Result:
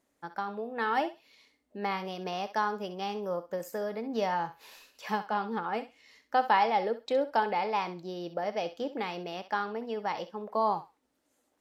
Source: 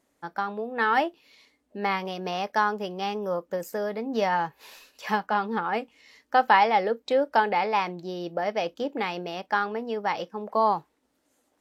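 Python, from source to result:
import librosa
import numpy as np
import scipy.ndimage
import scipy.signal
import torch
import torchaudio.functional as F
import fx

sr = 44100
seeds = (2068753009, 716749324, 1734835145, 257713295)

y = fx.dynamic_eq(x, sr, hz=1800.0, q=1.2, threshold_db=-37.0, ratio=4.0, max_db=-4)
y = fx.echo_thinned(y, sr, ms=65, feedback_pct=22, hz=670.0, wet_db=-11.5)
y = y * 10.0 ** (-4.5 / 20.0)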